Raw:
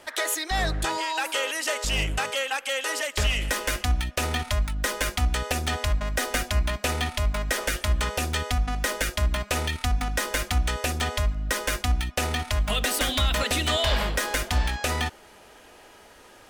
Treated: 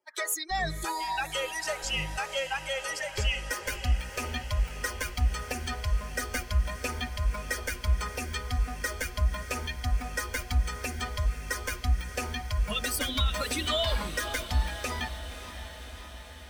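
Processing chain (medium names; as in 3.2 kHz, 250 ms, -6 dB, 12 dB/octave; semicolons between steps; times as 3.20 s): expander on every frequency bin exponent 2; echo that smears into a reverb 562 ms, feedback 68%, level -11.5 dB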